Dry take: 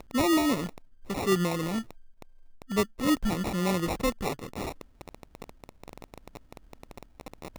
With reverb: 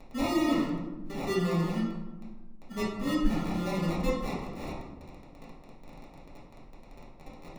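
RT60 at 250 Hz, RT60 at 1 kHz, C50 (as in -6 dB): 1.7 s, 1.0 s, 1.5 dB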